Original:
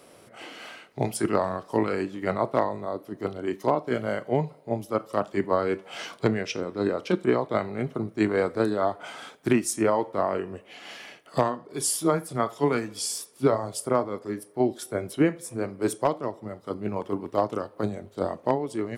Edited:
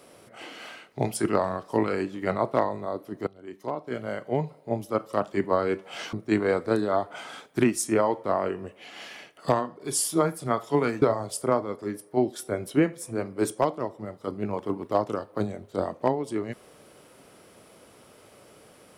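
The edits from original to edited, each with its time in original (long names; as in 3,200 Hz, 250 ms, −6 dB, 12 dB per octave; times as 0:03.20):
0:03.27–0:04.69: fade in, from −18.5 dB
0:06.13–0:08.02: remove
0:12.91–0:13.45: remove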